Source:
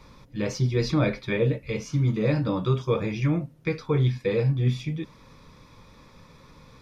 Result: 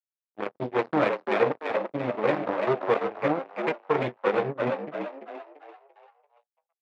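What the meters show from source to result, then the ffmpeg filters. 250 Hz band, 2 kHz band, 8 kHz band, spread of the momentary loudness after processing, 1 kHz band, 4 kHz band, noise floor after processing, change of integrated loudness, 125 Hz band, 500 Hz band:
−4.5 dB, +3.0 dB, can't be measured, 12 LU, +9.5 dB, −5.0 dB, below −85 dBFS, −2.0 dB, −16.5 dB, +2.5 dB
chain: -filter_complex "[0:a]aeval=exprs='0.299*(cos(1*acos(clip(val(0)/0.299,-1,1)))-cos(1*PI/2))+0.0422*(cos(7*acos(clip(val(0)/0.299,-1,1)))-cos(7*PI/2))':channel_layout=same,aeval=exprs='sgn(val(0))*max(abs(val(0))-0.00299,0)':channel_layout=same,adynamicsmooth=sensitivity=6:basefreq=530,highpass=380,lowpass=2200,asplit=6[link_01][link_02][link_03][link_04][link_05][link_06];[link_02]adelay=340,afreqshift=69,volume=-5dB[link_07];[link_03]adelay=680,afreqshift=138,volume=-12.5dB[link_08];[link_04]adelay=1020,afreqshift=207,volume=-20.1dB[link_09];[link_05]adelay=1360,afreqshift=276,volume=-27.6dB[link_10];[link_06]adelay=1700,afreqshift=345,volume=-35.1dB[link_11];[link_01][link_07][link_08][link_09][link_10][link_11]amix=inputs=6:normalize=0,volume=4dB"

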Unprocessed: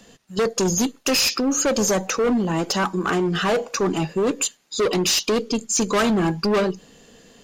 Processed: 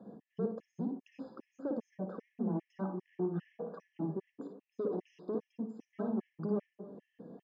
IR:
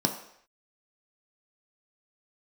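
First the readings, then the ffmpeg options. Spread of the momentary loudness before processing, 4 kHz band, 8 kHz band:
5 LU, below −40 dB, below −40 dB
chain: -filter_complex "[0:a]acrusher=bits=4:mode=log:mix=0:aa=0.000001,acompressor=threshold=-34dB:ratio=10,asuperpass=centerf=340:order=4:qfactor=0.53,aecho=1:1:283:0.1,asplit=2[link_01][link_02];[1:a]atrim=start_sample=2205,adelay=55[link_03];[link_02][link_03]afir=irnorm=-1:irlink=0,volume=-15dB[link_04];[link_01][link_04]amix=inputs=2:normalize=0,afftfilt=real='re*gt(sin(2*PI*2.5*pts/sr)*(1-2*mod(floor(b*sr/1024/1700),2)),0)':imag='im*gt(sin(2*PI*2.5*pts/sr)*(1-2*mod(floor(b*sr/1024/1700),2)),0)':win_size=1024:overlap=0.75,volume=-1dB"

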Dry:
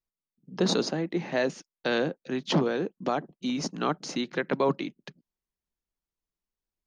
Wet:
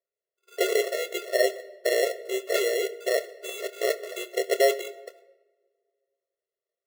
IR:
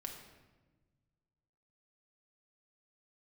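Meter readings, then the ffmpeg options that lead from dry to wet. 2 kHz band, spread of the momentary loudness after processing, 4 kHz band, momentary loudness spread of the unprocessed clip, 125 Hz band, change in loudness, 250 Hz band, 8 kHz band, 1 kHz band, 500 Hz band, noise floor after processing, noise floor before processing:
+3.5 dB, 12 LU, +1.5 dB, 7 LU, below −40 dB, +2.5 dB, −10.5 dB, +5.5 dB, −2.5 dB, +5.0 dB, below −85 dBFS, below −85 dBFS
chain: -filter_complex "[0:a]acrusher=samples=36:mix=1:aa=0.000001,asplit=2[link_01][link_02];[1:a]atrim=start_sample=2205,adelay=26[link_03];[link_02][link_03]afir=irnorm=-1:irlink=0,volume=-9dB[link_04];[link_01][link_04]amix=inputs=2:normalize=0,afftfilt=real='re*eq(mod(floor(b*sr/1024/360),2),1)':imag='im*eq(mod(floor(b*sr/1024/360),2),1)':win_size=1024:overlap=0.75,volume=6dB"

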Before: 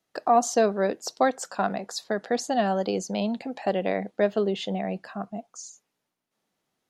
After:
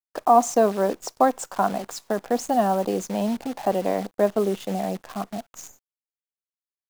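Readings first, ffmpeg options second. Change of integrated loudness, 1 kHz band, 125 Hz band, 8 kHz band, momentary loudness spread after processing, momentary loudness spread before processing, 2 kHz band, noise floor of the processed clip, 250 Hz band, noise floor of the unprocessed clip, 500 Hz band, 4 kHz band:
+3.0 dB, +4.5 dB, +1.5 dB, +1.0 dB, 14 LU, 13 LU, −2.5 dB, below −85 dBFS, +2.5 dB, −81 dBFS, +2.5 dB, −3.5 dB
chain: -af "equalizer=frequency=125:width_type=o:width=1:gain=-3,equalizer=frequency=250:width_type=o:width=1:gain=4,equalizer=frequency=1000:width_type=o:width=1:gain=8,equalizer=frequency=2000:width_type=o:width=1:gain=-6,equalizer=frequency=4000:width_type=o:width=1:gain=-8,equalizer=frequency=8000:width_type=o:width=1:gain=4,acrusher=bits=7:dc=4:mix=0:aa=0.000001"

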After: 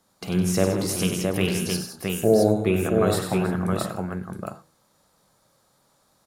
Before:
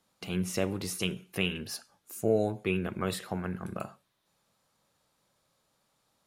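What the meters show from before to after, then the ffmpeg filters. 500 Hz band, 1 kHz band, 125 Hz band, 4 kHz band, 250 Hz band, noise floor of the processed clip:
+10.0 dB, +10.0 dB, +10.5 dB, +5.5 dB, +10.5 dB, −65 dBFS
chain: -filter_complex "[0:a]equalizer=frequency=2700:width_type=o:width=0.86:gain=-7.5,bandreject=frequency=81.11:width_type=h:width=4,bandreject=frequency=162.22:width_type=h:width=4,bandreject=frequency=243.33:width_type=h:width=4,bandreject=frequency=324.44:width_type=h:width=4,bandreject=frequency=405.55:width_type=h:width=4,bandreject=frequency=486.66:width_type=h:width=4,asplit=2[link_01][link_02];[link_02]aecho=0:1:51|95|161|189|322|667:0.266|0.447|0.282|0.15|0.15|0.631[link_03];[link_01][link_03]amix=inputs=2:normalize=0,volume=8dB"

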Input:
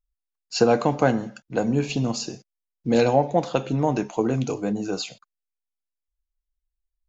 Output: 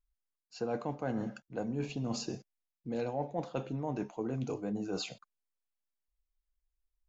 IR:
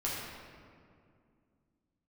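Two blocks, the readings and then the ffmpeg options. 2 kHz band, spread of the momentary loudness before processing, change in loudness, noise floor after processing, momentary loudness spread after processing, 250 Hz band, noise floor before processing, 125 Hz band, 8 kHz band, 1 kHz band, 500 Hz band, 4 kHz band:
−15.5 dB, 11 LU, −14.0 dB, below −85 dBFS, 6 LU, −12.5 dB, −85 dBFS, −12.5 dB, can't be measured, −15.5 dB, −15.0 dB, −12.5 dB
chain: -af "highshelf=frequency=2600:gain=-8,areverse,acompressor=threshold=-32dB:ratio=5,areverse,volume=-1.5dB"

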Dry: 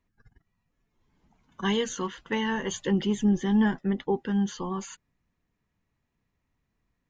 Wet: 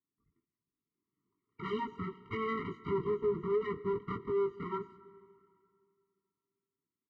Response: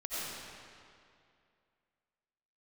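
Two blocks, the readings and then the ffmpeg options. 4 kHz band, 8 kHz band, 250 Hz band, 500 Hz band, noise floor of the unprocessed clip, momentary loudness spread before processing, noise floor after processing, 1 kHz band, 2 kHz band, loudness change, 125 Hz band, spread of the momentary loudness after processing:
−18.0 dB, can't be measured, −15.5 dB, −1.5 dB, −79 dBFS, 10 LU, below −85 dBFS, −4.5 dB, −11.0 dB, −8.0 dB, −11.0 dB, 8 LU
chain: -filter_complex "[0:a]aemphasis=mode=reproduction:type=50fm,bandreject=frequency=60:width_type=h:width=6,bandreject=frequency=120:width_type=h:width=6,bandreject=frequency=180:width_type=h:width=6,afwtdn=0.0126,equalizer=frequency=290:width_type=o:width=0.51:gain=12.5,aecho=1:1:6:0.34,asplit=2[link_01][link_02];[link_02]acompressor=threshold=-29dB:ratio=6,volume=-1dB[link_03];[link_01][link_03]amix=inputs=2:normalize=0,asoftclip=type=tanh:threshold=-14.5dB,flanger=delay=18:depth=3:speed=1.2,aeval=exprs='abs(val(0))':channel_layout=same,highpass=130,lowpass=2300,asplit=2[link_04][link_05];[1:a]atrim=start_sample=2205[link_06];[link_05][link_06]afir=irnorm=-1:irlink=0,volume=-20.5dB[link_07];[link_04][link_07]amix=inputs=2:normalize=0,afftfilt=real='re*eq(mod(floor(b*sr/1024/460),2),0)':imag='im*eq(mod(floor(b*sr/1024/460),2),0)':win_size=1024:overlap=0.75,volume=-1.5dB"

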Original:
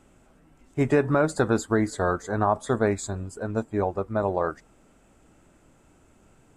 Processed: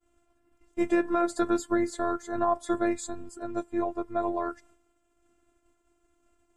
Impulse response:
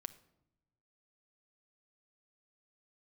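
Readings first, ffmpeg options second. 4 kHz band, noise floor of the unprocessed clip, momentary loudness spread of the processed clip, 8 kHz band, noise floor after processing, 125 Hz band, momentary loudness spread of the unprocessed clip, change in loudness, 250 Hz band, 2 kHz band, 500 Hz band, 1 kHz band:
−3.5 dB, −59 dBFS, 10 LU, −4.0 dB, −72 dBFS, −19.5 dB, 8 LU, −3.5 dB, −1.5 dB, −6.5 dB, −5.0 dB, −2.5 dB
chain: -af "agate=range=-33dB:threshold=-50dB:ratio=3:detection=peak,afftfilt=real='hypot(re,im)*cos(PI*b)':imag='0':win_size=512:overlap=0.75"

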